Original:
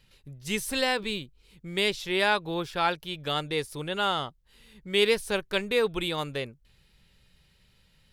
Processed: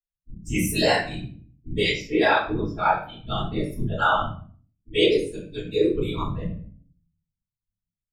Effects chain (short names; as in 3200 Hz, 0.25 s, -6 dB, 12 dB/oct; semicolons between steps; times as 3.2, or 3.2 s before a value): per-bin expansion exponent 3; whisperiser; 5.04–5.96 EQ curve 430 Hz 0 dB, 680 Hz -28 dB, 7900 Hz +4 dB, 12000 Hz -10 dB; reverb RT60 0.45 s, pre-delay 3 ms, DRR -11.5 dB; AGC gain up to 7.5 dB; gain -6 dB